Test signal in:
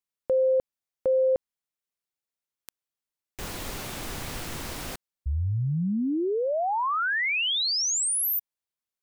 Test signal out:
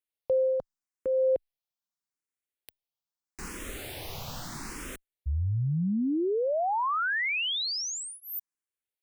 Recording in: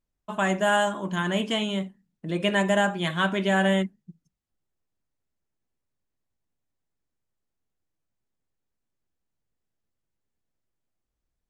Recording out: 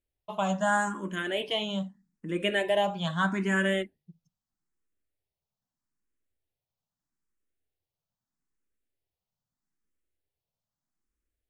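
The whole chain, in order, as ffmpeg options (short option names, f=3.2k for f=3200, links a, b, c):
-filter_complex "[0:a]asplit=2[a][b];[b]afreqshift=0.79[c];[a][c]amix=inputs=2:normalize=1,volume=-1dB"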